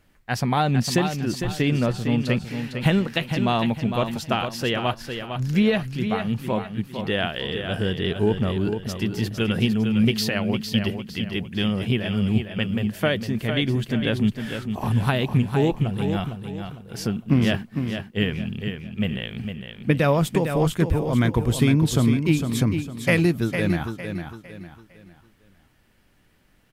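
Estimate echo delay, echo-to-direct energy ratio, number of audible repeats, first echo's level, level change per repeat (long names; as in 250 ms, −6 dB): 455 ms, −7.0 dB, 4, −7.5 dB, −9.0 dB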